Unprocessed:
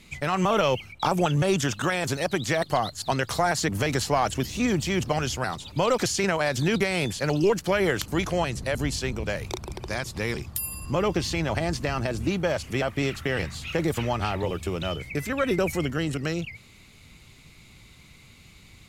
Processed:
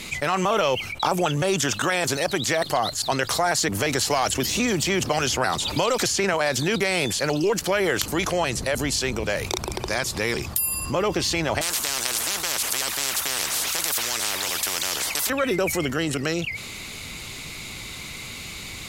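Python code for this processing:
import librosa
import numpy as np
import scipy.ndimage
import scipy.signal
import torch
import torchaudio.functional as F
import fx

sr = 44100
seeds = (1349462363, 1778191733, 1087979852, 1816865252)

y = fx.band_squash(x, sr, depth_pct=100, at=(4.1, 6.34))
y = fx.spectral_comp(y, sr, ratio=10.0, at=(11.61, 15.3))
y = fx.bass_treble(y, sr, bass_db=-8, treble_db=3)
y = fx.env_flatten(y, sr, amount_pct=50)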